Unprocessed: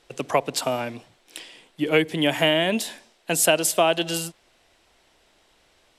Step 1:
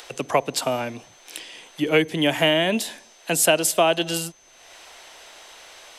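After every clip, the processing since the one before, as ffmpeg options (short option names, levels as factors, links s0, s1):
-filter_complex "[0:a]acrossover=split=480[s0][s1];[s1]acompressor=mode=upward:threshold=0.0251:ratio=2.5[s2];[s0][s2]amix=inputs=2:normalize=0,aeval=exprs='val(0)+0.00178*sin(2*PI*6200*n/s)':c=same,volume=1.12"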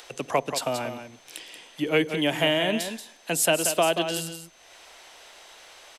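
-af "aecho=1:1:182:0.355,volume=0.631"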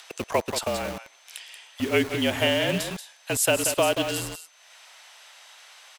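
-filter_complex "[0:a]afreqshift=-43,acrossover=split=680[s0][s1];[s0]acrusher=bits=5:mix=0:aa=0.000001[s2];[s2][s1]amix=inputs=2:normalize=0"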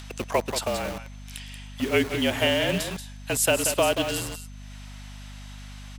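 -af "aeval=exprs='val(0)+0.01*(sin(2*PI*50*n/s)+sin(2*PI*2*50*n/s)/2+sin(2*PI*3*50*n/s)/3+sin(2*PI*4*50*n/s)/4+sin(2*PI*5*50*n/s)/5)':c=same"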